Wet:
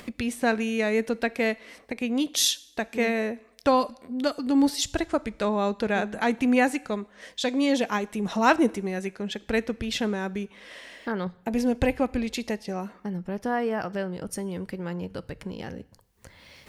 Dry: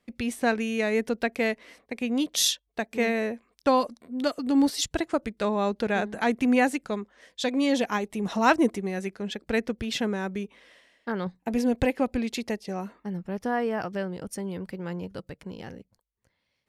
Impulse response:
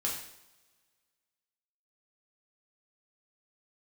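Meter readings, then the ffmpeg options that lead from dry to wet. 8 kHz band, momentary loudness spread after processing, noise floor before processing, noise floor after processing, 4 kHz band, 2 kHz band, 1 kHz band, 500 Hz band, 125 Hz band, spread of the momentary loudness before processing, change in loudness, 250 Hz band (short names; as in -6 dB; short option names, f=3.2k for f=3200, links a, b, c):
+1.0 dB, 13 LU, -77 dBFS, -57 dBFS, +1.0 dB, +1.0 dB, +0.5 dB, +0.5 dB, +1.0 dB, 12 LU, +0.5 dB, +0.5 dB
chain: -filter_complex "[0:a]acompressor=mode=upward:threshold=-29dB:ratio=2.5,asplit=2[a][b];[b]asubboost=boost=6.5:cutoff=93[c];[1:a]atrim=start_sample=2205[d];[c][d]afir=irnorm=-1:irlink=0,volume=-20dB[e];[a][e]amix=inputs=2:normalize=0"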